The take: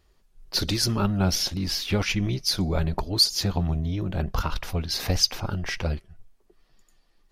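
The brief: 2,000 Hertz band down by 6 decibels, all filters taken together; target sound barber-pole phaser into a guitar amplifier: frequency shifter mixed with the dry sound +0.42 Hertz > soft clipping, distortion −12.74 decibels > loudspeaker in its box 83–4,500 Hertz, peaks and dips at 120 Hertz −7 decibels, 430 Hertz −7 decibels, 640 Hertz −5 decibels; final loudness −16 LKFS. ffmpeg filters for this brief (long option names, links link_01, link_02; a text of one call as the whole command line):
ffmpeg -i in.wav -filter_complex "[0:a]equalizer=frequency=2000:width_type=o:gain=-8,asplit=2[link_01][link_02];[link_02]afreqshift=0.42[link_03];[link_01][link_03]amix=inputs=2:normalize=1,asoftclip=threshold=-21.5dB,highpass=83,equalizer=frequency=120:width_type=q:width=4:gain=-7,equalizer=frequency=430:width_type=q:width=4:gain=-7,equalizer=frequency=640:width_type=q:width=4:gain=-5,lowpass=frequency=4500:width=0.5412,lowpass=frequency=4500:width=1.3066,volume=18dB" out.wav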